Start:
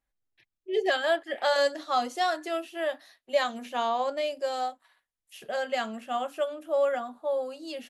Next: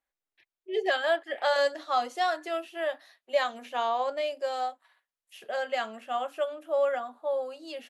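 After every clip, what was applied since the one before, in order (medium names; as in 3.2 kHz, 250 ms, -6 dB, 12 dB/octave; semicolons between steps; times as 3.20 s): tone controls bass -15 dB, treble -5 dB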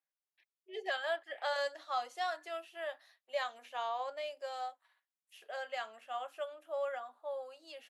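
high-pass 570 Hz 12 dB/octave; trim -8 dB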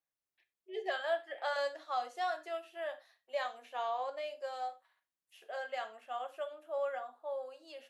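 tilt shelf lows +3.5 dB; gated-style reverb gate 120 ms falling, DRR 9 dB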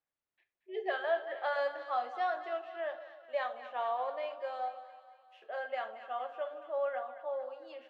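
low-pass 2.6 kHz 12 dB/octave; on a send: two-band feedback delay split 800 Hz, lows 151 ms, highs 228 ms, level -12 dB; on the sum: trim +2 dB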